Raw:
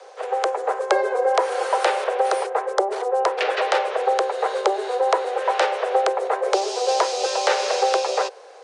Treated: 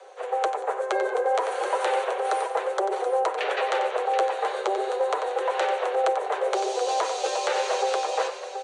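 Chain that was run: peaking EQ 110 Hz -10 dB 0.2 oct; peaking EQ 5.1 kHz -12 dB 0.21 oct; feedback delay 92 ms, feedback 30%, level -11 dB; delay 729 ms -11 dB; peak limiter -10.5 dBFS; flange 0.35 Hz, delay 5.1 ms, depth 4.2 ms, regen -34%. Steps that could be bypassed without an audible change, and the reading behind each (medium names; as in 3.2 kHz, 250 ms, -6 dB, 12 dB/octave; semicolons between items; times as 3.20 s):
peaking EQ 110 Hz: input has nothing below 320 Hz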